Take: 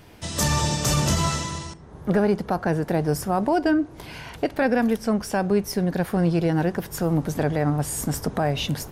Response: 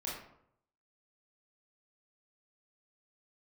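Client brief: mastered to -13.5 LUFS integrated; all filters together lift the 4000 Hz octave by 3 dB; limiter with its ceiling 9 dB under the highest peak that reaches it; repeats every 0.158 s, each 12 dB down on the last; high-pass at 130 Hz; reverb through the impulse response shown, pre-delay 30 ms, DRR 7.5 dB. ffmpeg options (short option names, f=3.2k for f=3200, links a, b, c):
-filter_complex "[0:a]highpass=130,equalizer=f=4k:t=o:g=4,alimiter=limit=-18dB:level=0:latency=1,aecho=1:1:158|316|474:0.251|0.0628|0.0157,asplit=2[a][b];[1:a]atrim=start_sample=2205,adelay=30[c];[b][c]afir=irnorm=-1:irlink=0,volume=-9dB[d];[a][d]amix=inputs=2:normalize=0,volume=14dB"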